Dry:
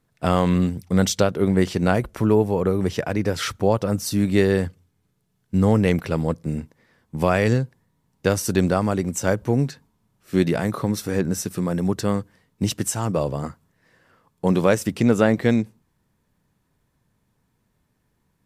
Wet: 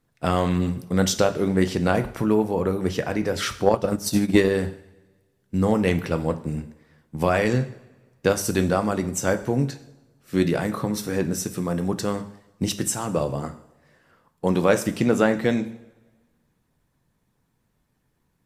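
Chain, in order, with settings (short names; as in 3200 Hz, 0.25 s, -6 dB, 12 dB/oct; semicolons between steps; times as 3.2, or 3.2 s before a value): two-slope reverb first 0.58 s, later 1.5 s, from -17 dB, DRR 7 dB; 3.64–4.55 transient shaper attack +11 dB, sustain -6 dB; harmonic-percussive split harmonic -4 dB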